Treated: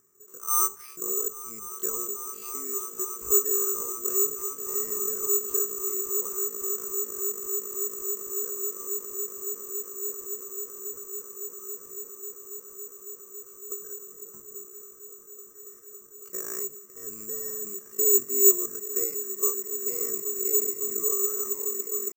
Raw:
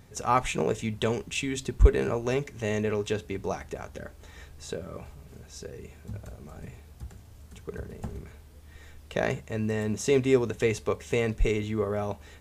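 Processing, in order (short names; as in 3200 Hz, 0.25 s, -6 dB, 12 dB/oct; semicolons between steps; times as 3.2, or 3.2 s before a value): rattling part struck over -25 dBFS, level -29 dBFS; double band-pass 690 Hz, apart 1.6 oct; swelling echo 0.155 s, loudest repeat 8, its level -14.5 dB; careless resampling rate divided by 6×, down filtered, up zero stuff; tempo 0.56×; gain -3.5 dB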